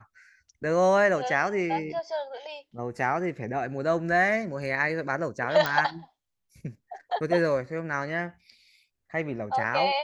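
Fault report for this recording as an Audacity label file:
5.660000	5.660000	pop -12 dBFS

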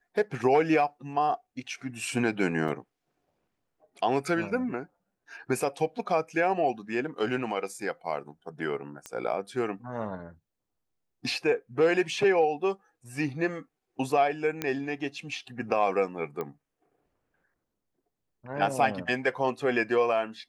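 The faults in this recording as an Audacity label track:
2.680000	2.690000	gap 5.6 ms
9.060000	9.060000	pop -22 dBFS
14.620000	14.620000	pop -14 dBFS
16.410000	16.410000	pop -21 dBFS

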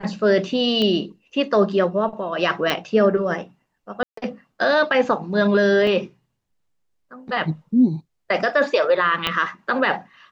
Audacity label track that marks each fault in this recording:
0.820000	0.820000	pop -11 dBFS
2.700000	2.700000	pop -7 dBFS
4.030000	4.170000	gap 0.144 s
5.870000	5.870000	gap 2.2 ms
9.270000	9.270000	pop -7 dBFS

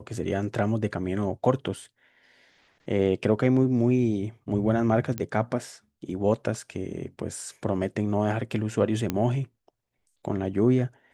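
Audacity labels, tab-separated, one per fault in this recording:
5.180000	5.180000	pop -15 dBFS
9.100000	9.100000	pop -12 dBFS

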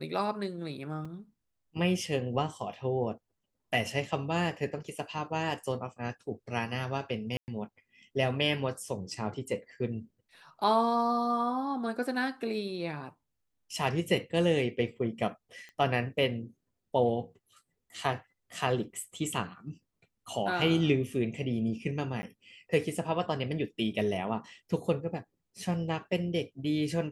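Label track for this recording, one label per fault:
1.050000	1.050000	gap 3.9 ms
7.370000	7.480000	gap 0.109 s
15.690000	15.690000	pop -34 dBFS
22.220000	22.230000	gap 10 ms

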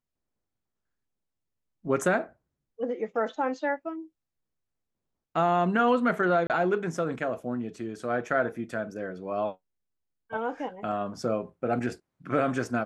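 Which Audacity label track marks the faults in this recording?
6.470000	6.500000	gap 28 ms

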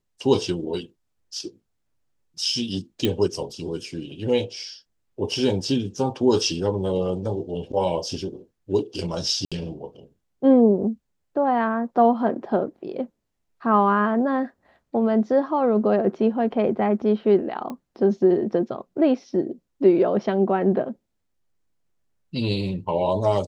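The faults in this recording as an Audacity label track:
3.050000	3.050000	pop -9 dBFS
9.450000	9.520000	gap 66 ms
17.700000	17.700000	pop -20 dBFS

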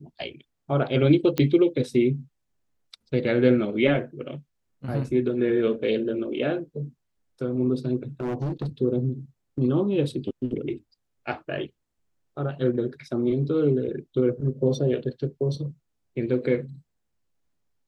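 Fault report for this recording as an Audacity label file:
1.380000	1.380000	pop -12 dBFS
8.200000	8.670000	clipped -24.5 dBFS

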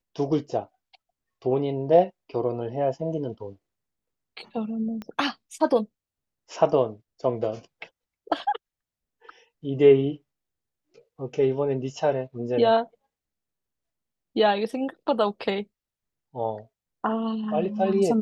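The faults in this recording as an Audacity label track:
5.020000	5.020000	pop -23 dBFS

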